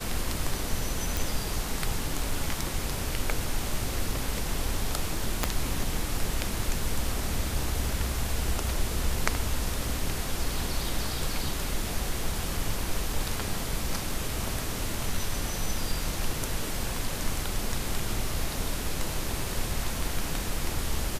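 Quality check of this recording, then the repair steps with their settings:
1.17 pop
5.44 pop -8 dBFS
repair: de-click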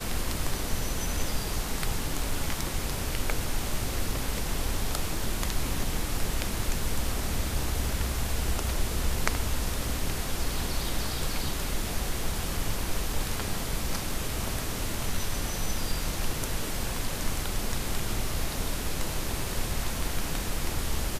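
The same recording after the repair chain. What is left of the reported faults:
5.44 pop

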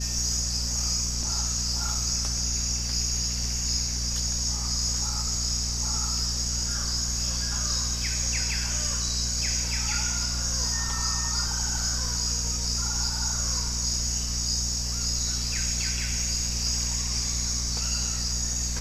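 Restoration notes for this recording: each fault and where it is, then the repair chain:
hum 60 Hz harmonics 4 -32 dBFS
1.23 gap 2.3 ms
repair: de-hum 60 Hz, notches 4; interpolate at 1.23, 2.3 ms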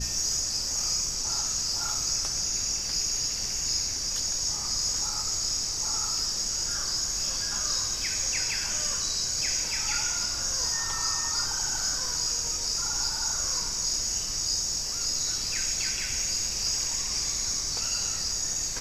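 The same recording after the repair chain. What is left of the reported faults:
none

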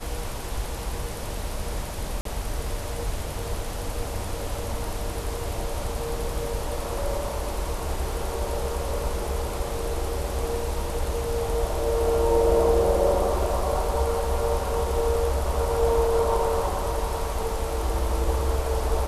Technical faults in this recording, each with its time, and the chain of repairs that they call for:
2.21–2.25 gap 43 ms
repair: interpolate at 2.21, 43 ms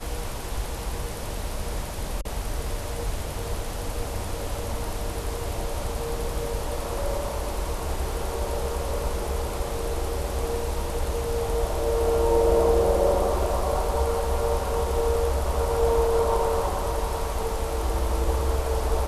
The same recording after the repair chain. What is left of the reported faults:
none

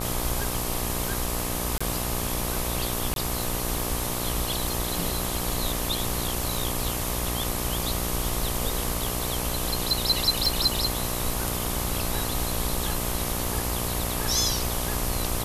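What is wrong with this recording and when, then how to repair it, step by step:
buzz 60 Hz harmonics 21 -32 dBFS
crackle 26/s -33 dBFS
1.78–1.8 gap 25 ms
3.14–3.16 gap 22 ms
10.46 pop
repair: de-click; de-hum 60 Hz, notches 21; interpolate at 1.78, 25 ms; interpolate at 3.14, 22 ms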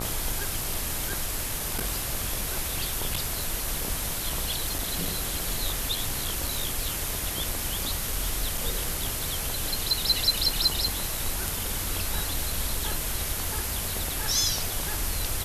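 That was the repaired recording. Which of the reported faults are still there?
none

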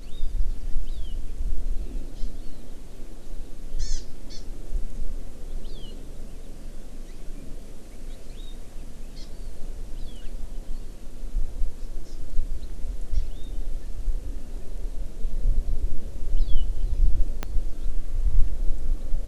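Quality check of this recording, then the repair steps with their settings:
17.43 pop -13 dBFS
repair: de-click

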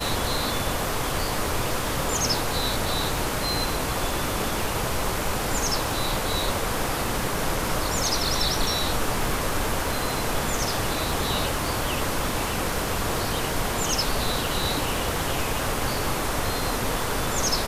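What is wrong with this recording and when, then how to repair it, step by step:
crackle 47/s -31 dBFS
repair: de-click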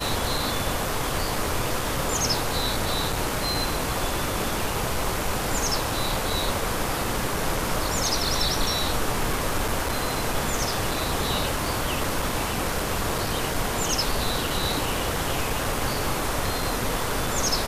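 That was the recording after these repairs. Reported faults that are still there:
none

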